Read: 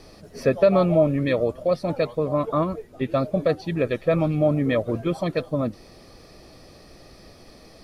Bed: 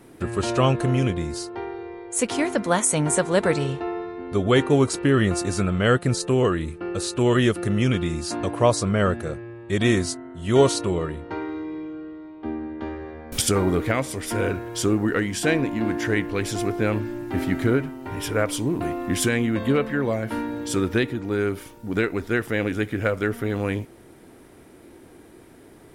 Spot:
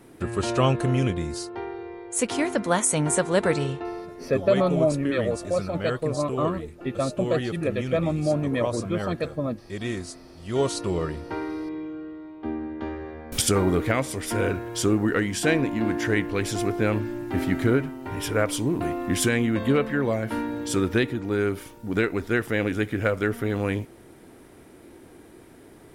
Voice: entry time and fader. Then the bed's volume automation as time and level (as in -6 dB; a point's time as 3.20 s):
3.85 s, -3.5 dB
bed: 3.64 s -1.5 dB
4.42 s -10.5 dB
10.40 s -10.5 dB
11.03 s -0.5 dB